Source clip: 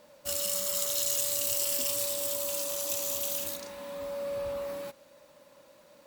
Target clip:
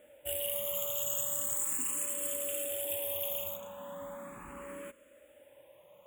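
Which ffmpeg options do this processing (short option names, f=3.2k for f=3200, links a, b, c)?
-filter_complex "[0:a]asuperstop=centerf=4900:order=12:qfactor=1.5,asplit=2[a][b];[b]afreqshift=0.38[c];[a][c]amix=inputs=2:normalize=1"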